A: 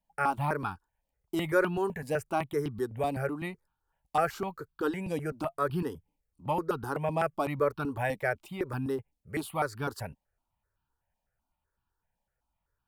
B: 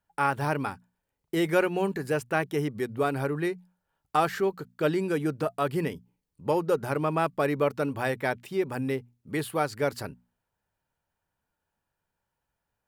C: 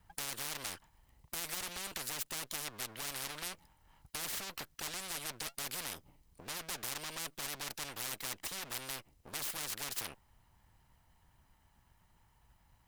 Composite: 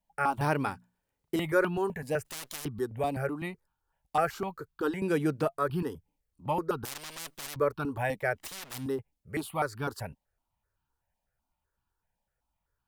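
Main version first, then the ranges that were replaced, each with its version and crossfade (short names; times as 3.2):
A
0.41–1.36 from B
2.25–2.65 from C
5.02–5.48 from B
6.85–7.56 from C
8.41–8.81 from C, crossfade 0.16 s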